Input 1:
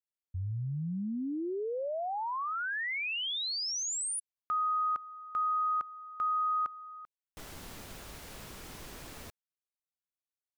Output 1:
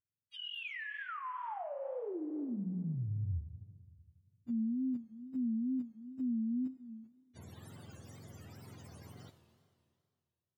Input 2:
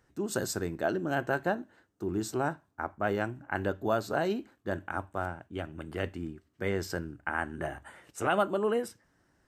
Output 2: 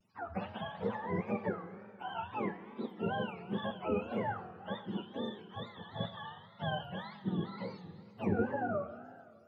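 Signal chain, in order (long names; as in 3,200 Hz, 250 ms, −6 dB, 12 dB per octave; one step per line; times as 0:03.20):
frequency axis turned over on the octave scale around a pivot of 550 Hz
four-comb reverb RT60 2.2 s, combs from 26 ms, DRR 9.5 dB
tape wow and flutter 140 cents
level −4.5 dB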